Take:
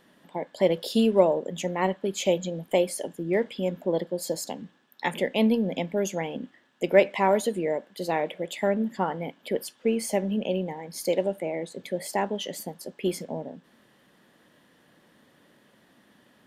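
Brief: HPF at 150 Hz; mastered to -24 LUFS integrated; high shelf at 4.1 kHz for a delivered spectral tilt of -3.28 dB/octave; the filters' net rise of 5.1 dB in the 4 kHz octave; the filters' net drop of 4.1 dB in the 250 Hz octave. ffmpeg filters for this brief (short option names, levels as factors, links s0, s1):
-af "highpass=150,equalizer=f=250:t=o:g=-4.5,equalizer=f=4000:t=o:g=5,highshelf=f=4100:g=3.5,volume=1.58"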